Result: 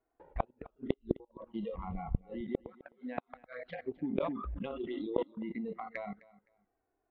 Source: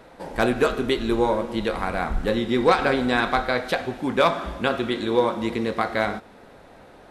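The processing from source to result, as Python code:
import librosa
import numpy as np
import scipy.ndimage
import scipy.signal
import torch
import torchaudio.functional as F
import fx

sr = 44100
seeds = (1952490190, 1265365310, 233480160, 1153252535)

y = fx.noise_reduce_blind(x, sr, reduce_db=24)
y = fx.highpass(y, sr, hz=270.0, slope=12, at=(2.34, 3.17))
y = fx.level_steps(y, sr, step_db=21)
y = fx.transient(y, sr, attack_db=8, sustain_db=0)
y = np.clip(10.0 ** (6.5 / 20.0) * y, -1.0, 1.0) / 10.0 ** (6.5 / 20.0)
y = fx.gate_flip(y, sr, shuts_db=-18.0, range_db=-39)
y = scipy.ndimage.gaussian_filter1d(y, 3.7, mode='constant')
y = fx.env_flanger(y, sr, rest_ms=2.8, full_db=-38.5)
y = fx.echo_feedback(y, sr, ms=258, feedback_pct=23, wet_db=-21)
y = fx.sustainer(y, sr, db_per_s=50.0, at=(4.06, 5.23))
y = y * 10.0 ** (4.5 / 20.0)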